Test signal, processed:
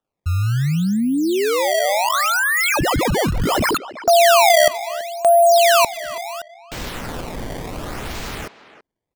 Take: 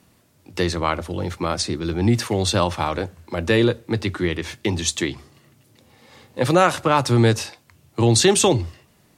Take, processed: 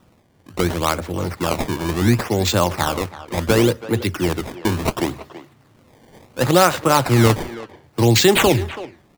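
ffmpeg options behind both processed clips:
-filter_complex "[0:a]acrusher=samples=19:mix=1:aa=0.000001:lfo=1:lforange=30.4:lforate=0.7,asplit=2[a][b];[b]adelay=330,highpass=300,lowpass=3.4k,asoftclip=type=hard:threshold=-12dB,volume=-14dB[c];[a][c]amix=inputs=2:normalize=0,volume=2dB"

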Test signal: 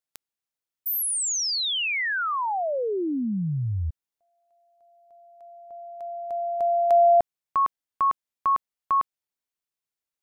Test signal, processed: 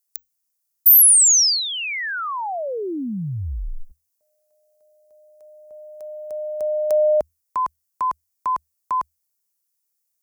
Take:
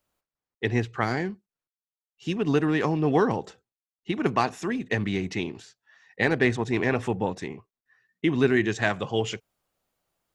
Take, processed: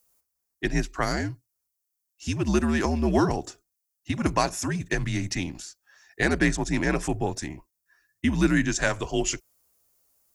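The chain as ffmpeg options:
-af "aexciter=amount=5.1:drive=4.1:freq=5k,afreqshift=-80"

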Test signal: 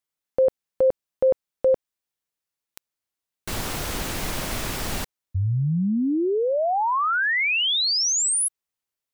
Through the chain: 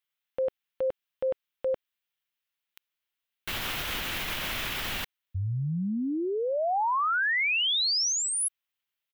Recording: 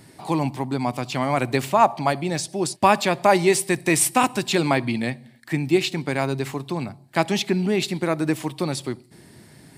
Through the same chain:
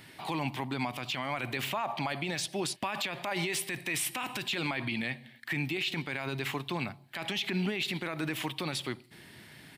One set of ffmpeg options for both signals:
-af "firequalizer=gain_entry='entry(400,0);entry(1500,9);entry(3100,14);entry(4600,4);entry(8300,-1);entry(14000,8)':delay=0.05:min_phase=1,alimiter=limit=-16dB:level=0:latency=1:release=32,volume=-7dB"

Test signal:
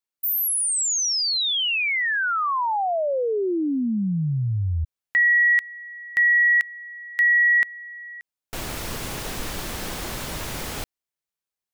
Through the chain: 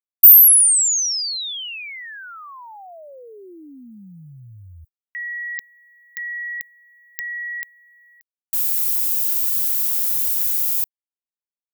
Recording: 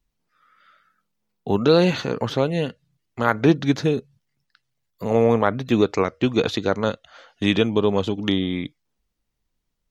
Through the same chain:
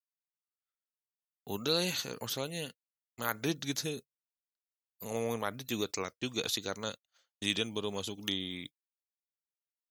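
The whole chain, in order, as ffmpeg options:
-af "aemphasis=mode=production:type=50fm,agate=range=-39dB:threshold=-36dB:ratio=3:release=74:detection=peak,crystalizer=i=5:c=0,volume=-17.5dB"

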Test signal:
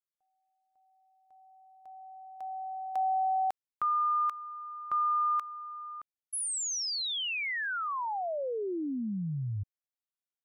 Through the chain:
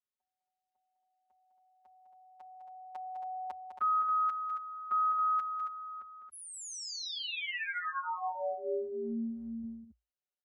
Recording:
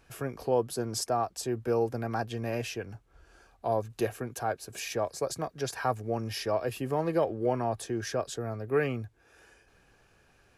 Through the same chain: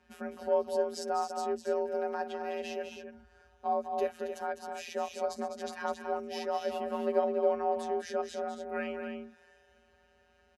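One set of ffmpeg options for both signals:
-filter_complex "[0:a]afftfilt=real='hypot(re,im)*cos(PI*b)':imag='0':win_size=1024:overlap=0.75,aemphasis=mode=reproduction:type=50fm,afreqshift=56,asplit=2[a][b];[b]aecho=0:1:204.1|274.1:0.398|0.398[c];[a][c]amix=inputs=2:normalize=0"

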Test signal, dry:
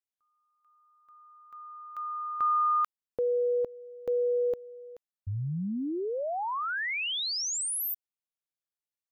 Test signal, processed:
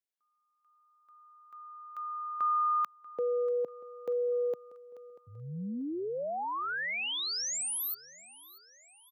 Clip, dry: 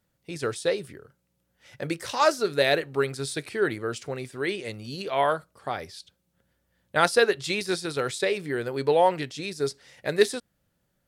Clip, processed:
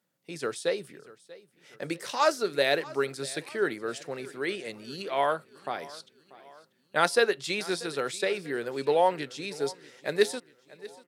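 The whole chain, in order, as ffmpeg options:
-filter_complex "[0:a]highpass=f=150:w=0.5412,highpass=f=150:w=1.3066,lowshelf=f=210:g=-3,asplit=2[a][b];[b]aecho=0:1:638|1276|1914|2552:0.1|0.049|0.024|0.0118[c];[a][c]amix=inputs=2:normalize=0,volume=-2.5dB"

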